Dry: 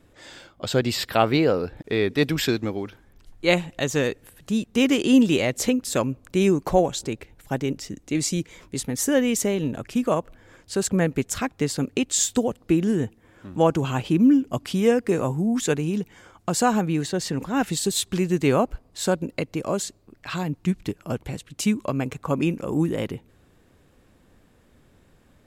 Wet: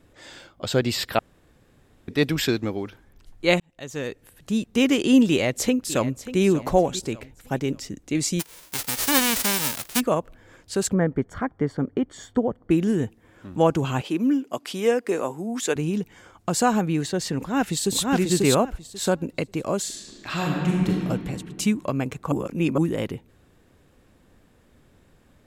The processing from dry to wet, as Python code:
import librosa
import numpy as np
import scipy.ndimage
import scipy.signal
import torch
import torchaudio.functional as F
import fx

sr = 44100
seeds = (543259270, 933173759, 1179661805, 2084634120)

y = fx.echo_throw(x, sr, start_s=5.3, length_s=1.1, ms=590, feedback_pct=35, wet_db=-14.0)
y = fx.envelope_flatten(y, sr, power=0.1, at=(8.39, 9.99), fade=0.02)
y = fx.savgol(y, sr, points=41, at=(10.93, 12.71))
y = fx.highpass(y, sr, hz=330.0, slope=12, at=(14.01, 15.76))
y = fx.echo_throw(y, sr, start_s=17.38, length_s=0.62, ms=540, feedback_pct=15, wet_db=-0.5)
y = fx.reverb_throw(y, sr, start_s=19.81, length_s=1.08, rt60_s=2.3, drr_db=-3.0)
y = fx.edit(y, sr, fx.room_tone_fill(start_s=1.19, length_s=0.89),
    fx.fade_in_span(start_s=3.6, length_s=0.97),
    fx.reverse_span(start_s=22.32, length_s=0.46), tone=tone)